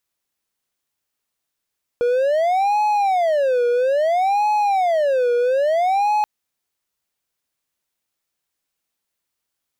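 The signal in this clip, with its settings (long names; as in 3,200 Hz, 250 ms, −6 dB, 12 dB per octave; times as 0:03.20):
siren wail 480–845 Hz 0.6 per second triangle −13 dBFS 4.23 s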